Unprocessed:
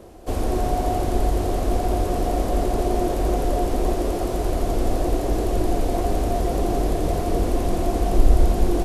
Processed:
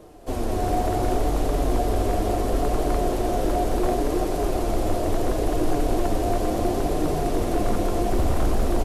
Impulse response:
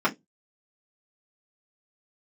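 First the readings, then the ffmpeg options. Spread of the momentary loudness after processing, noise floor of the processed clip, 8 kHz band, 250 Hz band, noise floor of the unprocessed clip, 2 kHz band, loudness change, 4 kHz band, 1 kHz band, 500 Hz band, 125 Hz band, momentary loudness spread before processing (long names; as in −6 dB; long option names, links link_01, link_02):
1 LU, −26 dBFS, −0.5 dB, −0.5 dB, −25 dBFS, +1.0 dB, −1.5 dB, 0.0 dB, 0.0 dB, −0.5 dB, −2.5 dB, 3 LU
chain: -filter_complex "[0:a]asplit=2[link_01][link_02];[link_02]aecho=0:1:208|416|624|832|1040:0.398|0.183|0.0842|0.0388|0.0178[link_03];[link_01][link_03]amix=inputs=2:normalize=0,flanger=delay=6.5:depth=3.3:regen=38:speed=0.71:shape=sinusoidal,aecho=1:1:334:0.596,aeval=exprs='0.168*(abs(mod(val(0)/0.168+3,4)-2)-1)':channel_layout=same,asplit=2[link_04][link_05];[1:a]atrim=start_sample=2205[link_06];[link_05][link_06]afir=irnorm=-1:irlink=0,volume=-33dB[link_07];[link_04][link_07]amix=inputs=2:normalize=0,volume=1.5dB"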